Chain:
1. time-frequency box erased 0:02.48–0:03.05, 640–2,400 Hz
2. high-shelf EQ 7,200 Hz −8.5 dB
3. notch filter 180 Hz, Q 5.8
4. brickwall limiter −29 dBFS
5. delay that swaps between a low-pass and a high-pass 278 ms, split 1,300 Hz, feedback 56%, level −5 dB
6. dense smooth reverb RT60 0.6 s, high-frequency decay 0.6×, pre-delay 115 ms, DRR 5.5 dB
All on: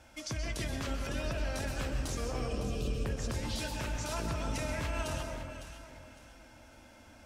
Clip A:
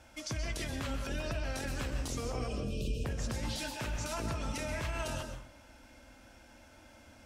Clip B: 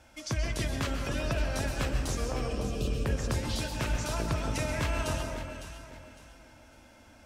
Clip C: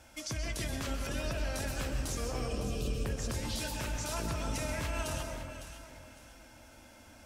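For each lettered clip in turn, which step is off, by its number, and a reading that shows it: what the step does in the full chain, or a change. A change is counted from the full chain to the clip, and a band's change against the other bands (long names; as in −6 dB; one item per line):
5, echo-to-direct ratio −2.5 dB to −5.5 dB
4, average gain reduction 2.0 dB
2, 8 kHz band +3.5 dB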